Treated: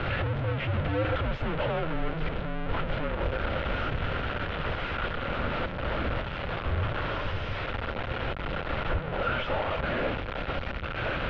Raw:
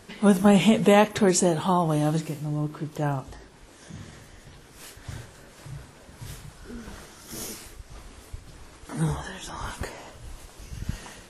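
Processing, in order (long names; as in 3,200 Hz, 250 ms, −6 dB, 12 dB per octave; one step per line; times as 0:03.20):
sign of each sample alone
hollow resonant body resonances 270/850/1,700 Hz, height 8 dB, ringing for 20 ms
single-sideband voice off tune −320 Hz 200–3,500 Hz
level −3 dB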